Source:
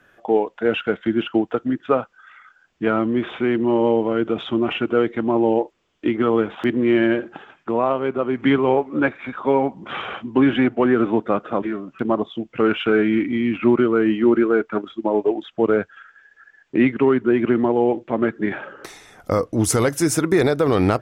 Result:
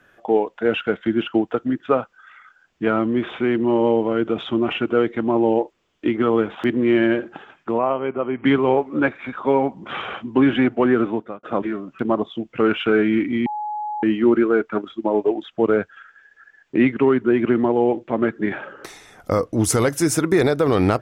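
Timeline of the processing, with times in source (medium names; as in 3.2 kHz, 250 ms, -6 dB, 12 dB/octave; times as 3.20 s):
7.78–8.45 s: rippled Chebyshev low-pass 3.2 kHz, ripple 3 dB
10.96–11.43 s: fade out
13.46–14.03 s: bleep 843 Hz -24 dBFS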